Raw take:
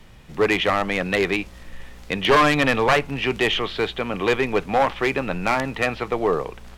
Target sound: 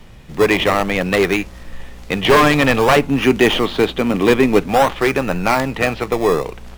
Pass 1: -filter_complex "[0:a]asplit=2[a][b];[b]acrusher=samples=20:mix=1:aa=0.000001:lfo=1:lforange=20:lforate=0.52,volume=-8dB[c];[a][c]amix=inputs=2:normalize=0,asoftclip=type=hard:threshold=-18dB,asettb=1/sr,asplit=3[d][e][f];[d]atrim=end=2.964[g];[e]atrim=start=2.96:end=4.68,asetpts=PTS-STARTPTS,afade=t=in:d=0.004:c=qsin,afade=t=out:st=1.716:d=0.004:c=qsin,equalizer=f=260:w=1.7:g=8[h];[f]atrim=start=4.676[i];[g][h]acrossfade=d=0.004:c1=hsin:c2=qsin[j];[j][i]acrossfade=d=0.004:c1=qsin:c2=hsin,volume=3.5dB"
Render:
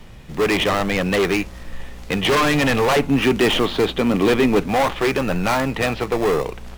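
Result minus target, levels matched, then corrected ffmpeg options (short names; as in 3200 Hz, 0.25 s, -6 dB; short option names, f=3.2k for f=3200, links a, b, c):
hard clip: distortion +23 dB
-filter_complex "[0:a]asplit=2[a][b];[b]acrusher=samples=20:mix=1:aa=0.000001:lfo=1:lforange=20:lforate=0.52,volume=-8dB[c];[a][c]amix=inputs=2:normalize=0,asoftclip=type=hard:threshold=-6dB,asettb=1/sr,asplit=3[d][e][f];[d]atrim=end=2.964[g];[e]atrim=start=2.96:end=4.68,asetpts=PTS-STARTPTS,afade=t=in:d=0.004:c=qsin,afade=t=out:st=1.716:d=0.004:c=qsin,equalizer=f=260:w=1.7:g=8[h];[f]atrim=start=4.676[i];[g][h]acrossfade=d=0.004:c1=hsin:c2=qsin[j];[j][i]acrossfade=d=0.004:c1=qsin:c2=hsin,volume=3.5dB"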